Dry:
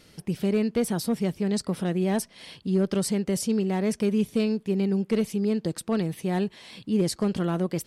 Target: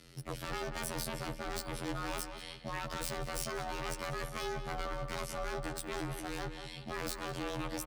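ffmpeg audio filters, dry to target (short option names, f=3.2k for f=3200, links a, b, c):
-filter_complex "[0:a]asettb=1/sr,asplit=3[a][b][c];[a]atrim=end=3.904[d];[b]atrim=start=3.9:end=5.55,asetpts=PTS-STARTPTS,afade=t=in:d=0.004:c=qsin,afade=t=out:st=1.646:d=0.004:c=qsin,highpass=f=52:w=0.5412,highpass=f=52:w=1.3066[e];[c]atrim=start=5.546[f];[d][e]acrossfade=d=0.004:c1=hsin:c2=qsin[g];[g][f]acrossfade=d=0.004:c1=qsin:c2=hsin,aeval=exprs='0.0299*(abs(mod(val(0)/0.0299+3,4)-2)-1)':c=same,afftfilt=real='hypot(re,im)*cos(PI*b)':imag='0':win_size=2048:overlap=0.75,asplit=2[h][i];[i]adelay=189,lowpass=f=2.2k:p=1,volume=-7dB,asplit=2[j][k];[k]adelay=189,lowpass=f=2.2k:p=1,volume=0.39,asplit=2[l][m];[m]adelay=189,lowpass=f=2.2k:p=1,volume=0.39,asplit=2[n][o];[o]adelay=189,lowpass=f=2.2k:p=1,volume=0.39,asplit=2[p][q];[q]adelay=189,lowpass=f=2.2k:p=1,volume=0.39[r];[h][j][l][n][p][r]amix=inputs=6:normalize=0,afreqshift=-35"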